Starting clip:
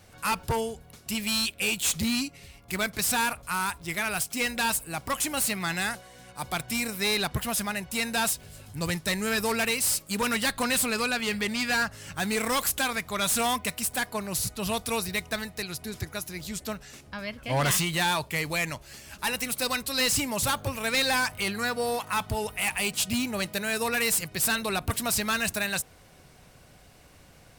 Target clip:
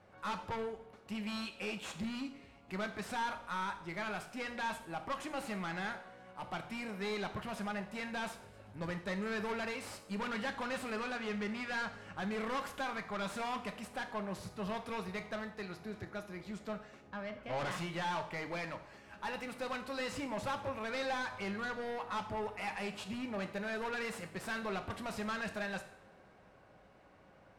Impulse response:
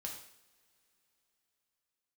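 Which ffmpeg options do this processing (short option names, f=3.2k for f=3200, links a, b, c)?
-filter_complex "[0:a]lowpass=1.3k,aemphasis=mode=production:type=bsi,aeval=exprs='(tanh(39.8*val(0)+0.15)-tanh(0.15))/39.8':c=same,asplit=2[a][b];[1:a]atrim=start_sample=2205[c];[b][c]afir=irnorm=-1:irlink=0,volume=2.5dB[d];[a][d]amix=inputs=2:normalize=0,volume=-7dB"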